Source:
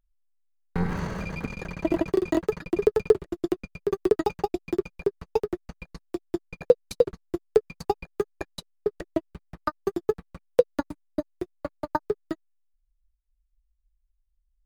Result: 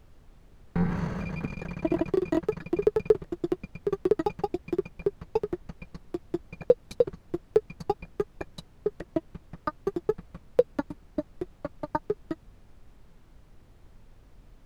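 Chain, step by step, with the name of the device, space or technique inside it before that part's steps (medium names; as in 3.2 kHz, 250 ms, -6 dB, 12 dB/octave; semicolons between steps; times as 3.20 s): car interior (peaking EQ 150 Hz +5 dB 0.89 oct; treble shelf 4.2 kHz -7.5 dB; brown noise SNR 20 dB); trim -2.5 dB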